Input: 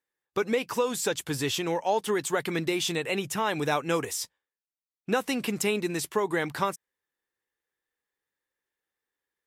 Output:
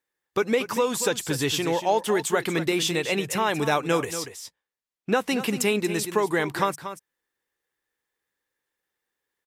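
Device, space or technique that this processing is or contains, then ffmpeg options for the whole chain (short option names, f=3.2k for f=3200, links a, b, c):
ducked delay: -filter_complex "[0:a]asplit=3[a][b][c];[b]adelay=234,volume=-4.5dB[d];[c]apad=whole_len=427513[e];[d][e]sidechaincompress=threshold=-30dB:ratio=10:attack=24:release=846[f];[a][f]amix=inputs=2:normalize=0,asettb=1/sr,asplit=3[g][h][i];[g]atrim=end=4.114[j];[h]atrim=start=4.11:end=5.31,asetpts=PTS-STARTPTS,afade=t=in:d=0.004:c=qsin,afade=t=out:st=1.196:d=0.004:c=qsin,highshelf=f=6.3k:g=-7[k];[i]atrim=start=5.306[l];[j][k]acrossfade=d=0.004:c1=hsin:c2=qsin[m];[m][l]acrossfade=d=0.004:c1=qsin:c2=hsin,volume=3.5dB"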